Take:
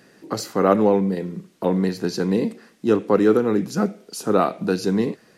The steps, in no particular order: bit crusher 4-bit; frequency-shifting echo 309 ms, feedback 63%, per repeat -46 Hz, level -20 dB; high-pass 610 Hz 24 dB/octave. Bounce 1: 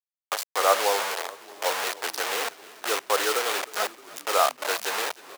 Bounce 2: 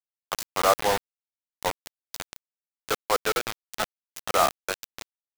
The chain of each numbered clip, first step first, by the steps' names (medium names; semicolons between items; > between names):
bit crusher > high-pass > frequency-shifting echo; high-pass > frequency-shifting echo > bit crusher